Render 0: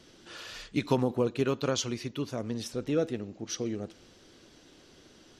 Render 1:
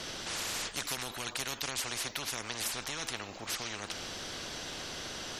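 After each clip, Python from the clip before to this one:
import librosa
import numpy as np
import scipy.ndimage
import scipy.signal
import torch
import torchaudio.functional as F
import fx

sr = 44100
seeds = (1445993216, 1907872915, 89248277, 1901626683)

y = fx.spectral_comp(x, sr, ratio=10.0)
y = y * 10.0 ** (-7.0 / 20.0)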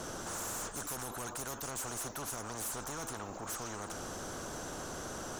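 y = fx.band_shelf(x, sr, hz=3100.0, db=-15.0, octaves=1.7)
y = 10.0 ** (-39.5 / 20.0) * np.tanh(y / 10.0 ** (-39.5 / 20.0))
y = y * 10.0 ** (4.5 / 20.0)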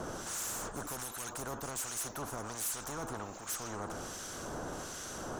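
y = fx.harmonic_tremolo(x, sr, hz=1.3, depth_pct=70, crossover_hz=1600.0)
y = y * 10.0 ** (3.5 / 20.0)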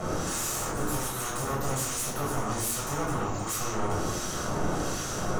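y = 10.0 ** (-37.0 / 20.0) * np.tanh(x / 10.0 ** (-37.0 / 20.0))
y = fx.room_shoebox(y, sr, seeds[0], volume_m3=1000.0, walls='furnished', distance_m=6.5)
y = y * 10.0 ** (4.0 / 20.0)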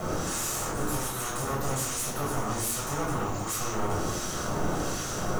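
y = fx.quant_dither(x, sr, seeds[1], bits=8, dither='none')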